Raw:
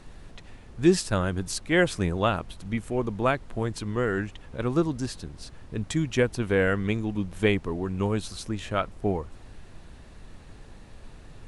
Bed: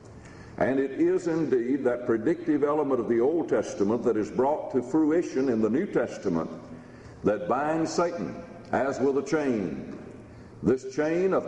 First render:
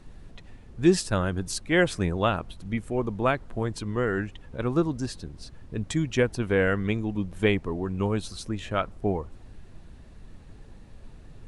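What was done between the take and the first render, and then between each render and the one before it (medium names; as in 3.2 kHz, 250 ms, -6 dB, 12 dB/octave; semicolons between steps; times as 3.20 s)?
noise reduction 6 dB, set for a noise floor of -48 dBFS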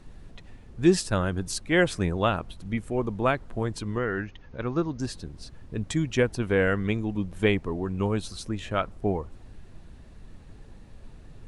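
3.98–5.00 s: rippled Chebyshev low-pass 6.6 kHz, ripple 3 dB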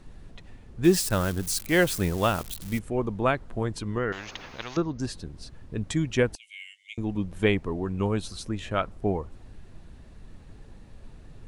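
0.84–2.79 s: zero-crossing glitches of -26 dBFS; 4.12–4.77 s: spectrum-flattening compressor 4:1; 6.35–6.98 s: rippled Chebyshev high-pass 2.1 kHz, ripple 9 dB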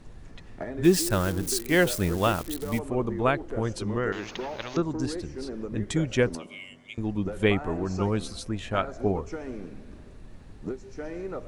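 add bed -11 dB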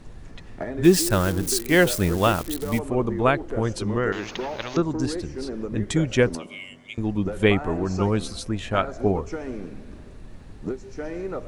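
trim +4 dB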